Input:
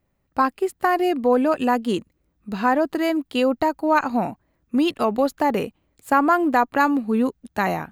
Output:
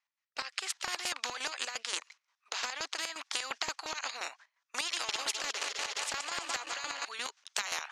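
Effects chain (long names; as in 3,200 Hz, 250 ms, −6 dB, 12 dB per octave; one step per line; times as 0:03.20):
0:04.81–0:07.05: feedback delay that plays each chunk backwards 103 ms, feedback 81%, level −9.5 dB
elliptic band-pass filter 950–6,100 Hz, stop band 60 dB
noise gate with hold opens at −50 dBFS
spectral tilt +3 dB per octave
automatic gain control gain up to 11.5 dB
brickwall limiter −9 dBFS, peak gain reduction 8 dB
downward compressor, threshold −22 dBFS, peak gain reduction 8.5 dB
rotating-speaker cabinet horn 0.75 Hz
square-wave tremolo 5.7 Hz, depth 65%, duty 40%
every bin compressed towards the loudest bin 4 to 1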